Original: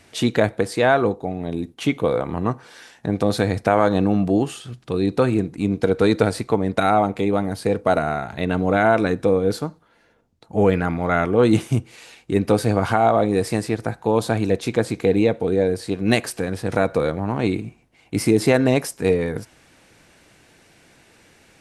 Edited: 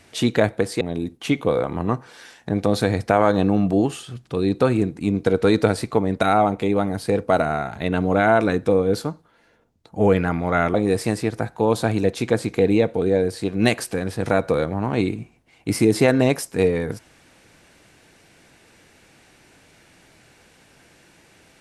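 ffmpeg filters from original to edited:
ffmpeg -i in.wav -filter_complex "[0:a]asplit=3[link_01][link_02][link_03];[link_01]atrim=end=0.812[link_04];[link_02]atrim=start=1.378:end=11.312[link_05];[link_03]atrim=start=13.198[link_06];[link_04][link_05]acrossfade=duration=0.004:curve1=hsin:curve2=hsin[link_07];[link_07][link_06]acrossfade=duration=0.004:curve1=hsin:curve2=hsin" out.wav

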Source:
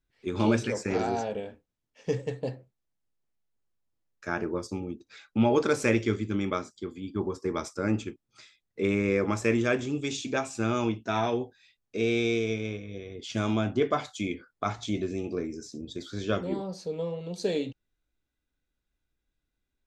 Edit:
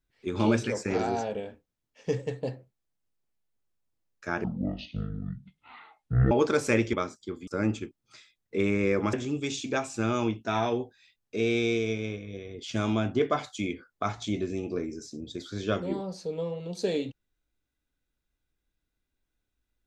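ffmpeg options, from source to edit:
ffmpeg -i in.wav -filter_complex "[0:a]asplit=6[link_01][link_02][link_03][link_04][link_05][link_06];[link_01]atrim=end=4.444[link_07];[link_02]atrim=start=4.44:end=5.47,asetpts=PTS-STARTPTS,asetrate=24255,aresample=44100,atrim=end_sample=82587,asetpts=PTS-STARTPTS[link_08];[link_03]atrim=start=5.466:end=6.092[link_09];[link_04]atrim=start=6.478:end=7.022[link_10];[link_05]atrim=start=7.718:end=9.382[link_11];[link_06]atrim=start=9.738[link_12];[link_07][link_08]acrossfade=duration=0.004:curve1=hsin:curve2=hsin[link_13];[link_13][link_09]acrossfade=duration=0.004:curve1=hsin:curve2=hsin[link_14];[link_14][link_10]acrossfade=duration=0.004:curve1=hsin:curve2=hsin[link_15];[link_15][link_11]acrossfade=duration=0.004:curve1=hsin:curve2=hsin[link_16];[link_16][link_12]acrossfade=duration=0.004:curve1=hsin:curve2=hsin" out.wav

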